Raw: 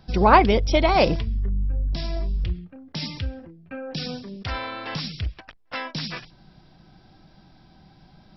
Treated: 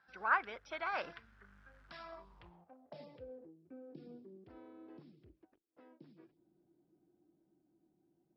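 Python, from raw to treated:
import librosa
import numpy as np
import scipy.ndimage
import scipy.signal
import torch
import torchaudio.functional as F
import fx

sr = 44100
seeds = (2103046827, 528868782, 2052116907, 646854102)

y = fx.law_mismatch(x, sr, coded='mu')
y = fx.doppler_pass(y, sr, speed_mps=10, closest_m=7.7, pass_at_s=1.92)
y = fx.filter_sweep_bandpass(y, sr, from_hz=1500.0, to_hz=340.0, start_s=1.84, end_s=3.7, q=6.0)
y = y * librosa.db_to_amplitude(2.0)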